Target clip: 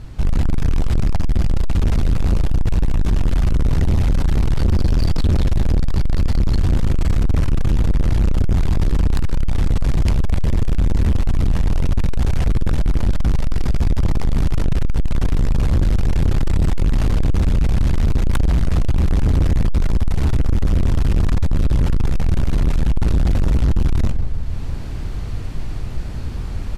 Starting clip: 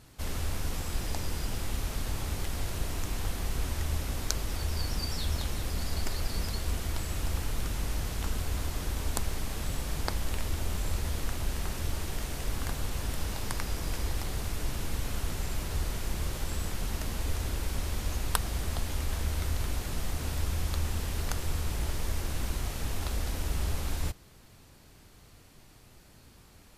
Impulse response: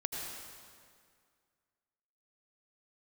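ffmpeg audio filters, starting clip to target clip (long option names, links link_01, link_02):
-filter_complex "[0:a]asplit=2[link_01][link_02];[link_02]adelay=158,lowpass=frequency=1100:poles=1,volume=-13dB,asplit=2[link_03][link_04];[link_04]adelay=158,lowpass=frequency=1100:poles=1,volume=0.53,asplit=2[link_05][link_06];[link_06]adelay=158,lowpass=frequency=1100:poles=1,volume=0.53,asplit=2[link_07][link_08];[link_08]adelay=158,lowpass=frequency=1100:poles=1,volume=0.53,asplit=2[link_09][link_10];[link_10]adelay=158,lowpass=frequency=1100:poles=1,volume=0.53[link_11];[link_01][link_03][link_05][link_07][link_09][link_11]amix=inputs=6:normalize=0,aeval=exprs='0.596*(cos(1*acos(clip(val(0)/0.596,-1,1)))-cos(1*PI/2))+0.237*(cos(7*acos(clip(val(0)/0.596,-1,1)))-cos(7*PI/2))':channel_layout=same,aemphasis=mode=reproduction:type=bsi,dynaudnorm=framelen=220:gausssize=3:maxgain=8.5dB,asoftclip=type=hard:threshold=-18.5dB,volume=6dB"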